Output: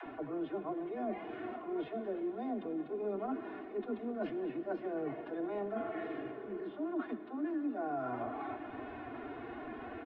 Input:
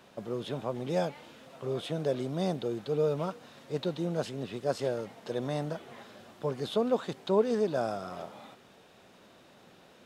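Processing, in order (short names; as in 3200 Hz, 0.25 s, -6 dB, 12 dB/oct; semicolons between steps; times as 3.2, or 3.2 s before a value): in parallel at -2 dB: upward compressor, threshold -32 dBFS; on the sum: LPF 2100 Hz 24 dB/oct; formant-preserving pitch shift +5.5 st; low shelf 170 Hz +5.5 dB; comb 2.8 ms, depth 96%; dispersion lows, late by 65 ms, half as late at 300 Hz; wow and flutter 20 cents; reverse; compressor 10:1, threshold -32 dBFS, peak gain reduction 21.5 dB; reverse; reverb RT60 4.6 s, pre-delay 37 ms, DRR 10.5 dB; spectral repair 5.82–6.63, 380–1600 Hz both; gain -3 dB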